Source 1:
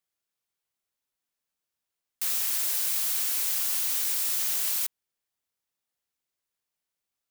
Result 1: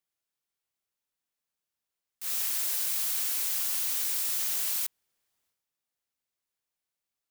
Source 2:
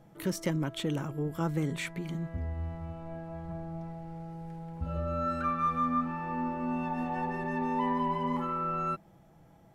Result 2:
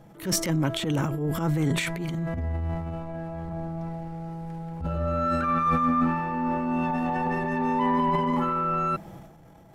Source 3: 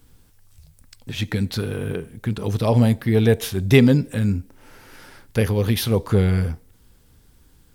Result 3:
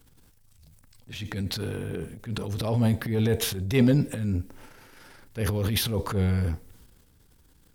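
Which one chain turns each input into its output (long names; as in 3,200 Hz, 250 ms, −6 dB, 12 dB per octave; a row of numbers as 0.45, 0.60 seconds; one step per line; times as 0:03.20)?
transient designer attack −9 dB, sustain +9 dB
loudness normalisation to −27 LKFS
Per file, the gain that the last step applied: −2.0, +6.5, −6.0 decibels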